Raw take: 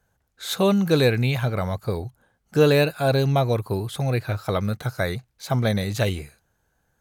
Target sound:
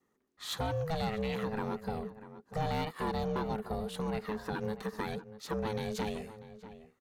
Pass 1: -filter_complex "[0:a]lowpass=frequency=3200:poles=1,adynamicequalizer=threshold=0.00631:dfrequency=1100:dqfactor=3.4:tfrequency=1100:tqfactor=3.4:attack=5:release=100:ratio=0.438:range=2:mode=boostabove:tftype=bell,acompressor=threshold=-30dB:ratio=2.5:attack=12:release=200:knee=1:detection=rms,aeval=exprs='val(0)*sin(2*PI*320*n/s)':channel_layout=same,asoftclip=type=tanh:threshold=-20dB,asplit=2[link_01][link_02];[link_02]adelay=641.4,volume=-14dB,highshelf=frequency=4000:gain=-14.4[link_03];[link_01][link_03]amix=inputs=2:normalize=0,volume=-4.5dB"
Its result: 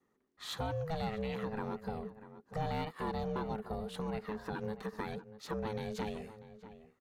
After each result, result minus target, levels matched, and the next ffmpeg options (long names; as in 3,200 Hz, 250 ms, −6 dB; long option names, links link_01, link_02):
downward compressor: peak gain reduction +4 dB; 8,000 Hz band −2.5 dB
-filter_complex "[0:a]lowpass=frequency=3200:poles=1,adynamicequalizer=threshold=0.00631:dfrequency=1100:dqfactor=3.4:tfrequency=1100:tqfactor=3.4:attack=5:release=100:ratio=0.438:range=2:mode=boostabove:tftype=bell,acompressor=threshold=-23.5dB:ratio=2.5:attack=12:release=200:knee=1:detection=rms,aeval=exprs='val(0)*sin(2*PI*320*n/s)':channel_layout=same,asoftclip=type=tanh:threshold=-20dB,asplit=2[link_01][link_02];[link_02]adelay=641.4,volume=-14dB,highshelf=frequency=4000:gain=-14.4[link_03];[link_01][link_03]amix=inputs=2:normalize=0,volume=-4.5dB"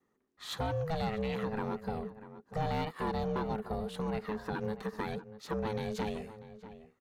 8,000 Hz band −4.5 dB
-filter_complex "[0:a]lowpass=frequency=7200:poles=1,adynamicequalizer=threshold=0.00631:dfrequency=1100:dqfactor=3.4:tfrequency=1100:tqfactor=3.4:attack=5:release=100:ratio=0.438:range=2:mode=boostabove:tftype=bell,acompressor=threshold=-23.5dB:ratio=2.5:attack=12:release=200:knee=1:detection=rms,aeval=exprs='val(0)*sin(2*PI*320*n/s)':channel_layout=same,asoftclip=type=tanh:threshold=-20dB,asplit=2[link_01][link_02];[link_02]adelay=641.4,volume=-14dB,highshelf=frequency=4000:gain=-14.4[link_03];[link_01][link_03]amix=inputs=2:normalize=0,volume=-4.5dB"